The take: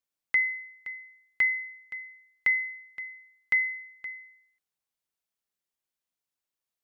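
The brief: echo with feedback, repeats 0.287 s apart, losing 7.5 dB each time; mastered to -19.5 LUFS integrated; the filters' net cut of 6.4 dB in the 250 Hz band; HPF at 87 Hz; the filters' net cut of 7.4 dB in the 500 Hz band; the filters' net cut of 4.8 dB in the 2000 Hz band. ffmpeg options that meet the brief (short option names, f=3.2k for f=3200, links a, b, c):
-af "highpass=87,equalizer=f=250:t=o:g=-6,equalizer=f=500:t=o:g=-8,equalizer=f=2k:t=o:g=-4.5,aecho=1:1:287|574|861|1148|1435:0.422|0.177|0.0744|0.0312|0.0131,volume=14.5dB"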